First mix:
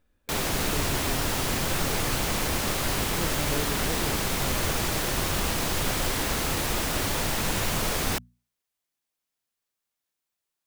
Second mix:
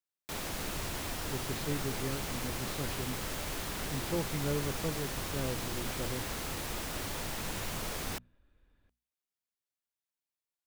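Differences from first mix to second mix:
speech: entry +0.95 s; background -10.5 dB

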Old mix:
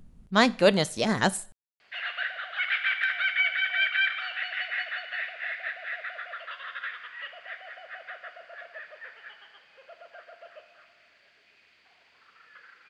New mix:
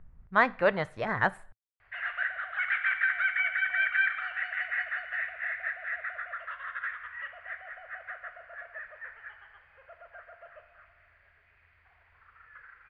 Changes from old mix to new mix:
background: remove HPF 230 Hz 12 dB/oct; master: add EQ curve 110 Hz 0 dB, 220 Hz -13 dB, 1100 Hz +1 dB, 1900 Hz +1 dB, 2900 Hz -13 dB, 6000 Hz -28 dB

